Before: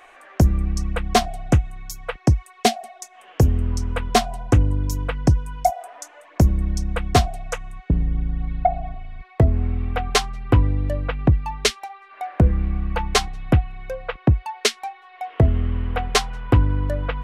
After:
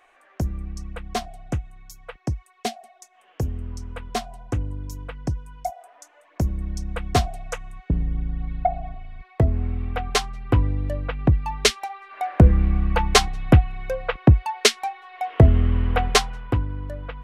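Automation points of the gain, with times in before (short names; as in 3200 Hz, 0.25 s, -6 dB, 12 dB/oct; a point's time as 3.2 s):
5.96 s -10 dB
7.29 s -3 dB
11.11 s -3 dB
11.86 s +3 dB
16.07 s +3 dB
16.66 s -9 dB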